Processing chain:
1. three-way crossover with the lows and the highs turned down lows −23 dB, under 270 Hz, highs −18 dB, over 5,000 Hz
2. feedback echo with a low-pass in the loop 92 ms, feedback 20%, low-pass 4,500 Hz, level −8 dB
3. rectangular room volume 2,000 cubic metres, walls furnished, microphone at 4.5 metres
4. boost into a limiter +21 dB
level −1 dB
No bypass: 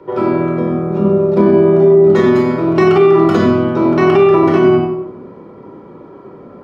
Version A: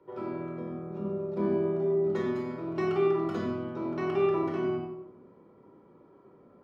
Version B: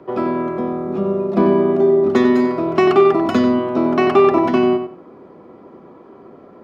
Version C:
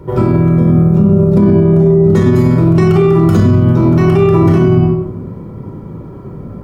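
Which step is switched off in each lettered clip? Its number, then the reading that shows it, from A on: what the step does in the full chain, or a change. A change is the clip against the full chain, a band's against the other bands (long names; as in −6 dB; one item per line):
4, change in crest factor +5.0 dB
3, change in momentary loudness spread +1 LU
1, 125 Hz band +15.0 dB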